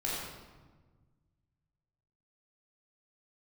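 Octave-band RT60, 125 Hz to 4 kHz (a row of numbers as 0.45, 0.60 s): 2.5, 2.0, 1.4, 1.3, 1.0, 0.85 s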